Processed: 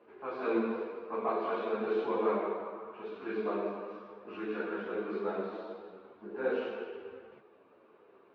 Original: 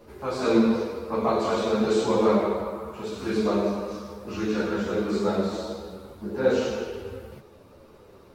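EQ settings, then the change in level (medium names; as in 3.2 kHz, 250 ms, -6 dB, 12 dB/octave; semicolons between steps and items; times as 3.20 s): cabinet simulation 460–2400 Hz, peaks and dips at 560 Hz -9 dB, 870 Hz -6 dB, 1.3 kHz -5 dB, 2 kHz -7 dB; -2.0 dB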